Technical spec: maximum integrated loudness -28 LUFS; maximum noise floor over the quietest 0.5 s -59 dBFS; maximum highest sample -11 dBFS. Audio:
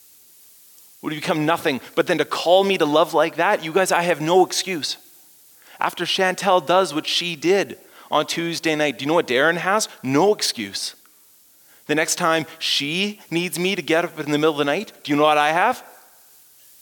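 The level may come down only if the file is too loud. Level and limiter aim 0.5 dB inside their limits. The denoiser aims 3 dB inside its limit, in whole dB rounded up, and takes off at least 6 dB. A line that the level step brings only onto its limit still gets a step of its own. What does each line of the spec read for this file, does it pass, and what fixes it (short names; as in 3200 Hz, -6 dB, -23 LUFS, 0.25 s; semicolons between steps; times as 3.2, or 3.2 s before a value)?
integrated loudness -20.0 LUFS: fail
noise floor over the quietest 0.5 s -53 dBFS: fail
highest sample -5.0 dBFS: fail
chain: gain -8.5 dB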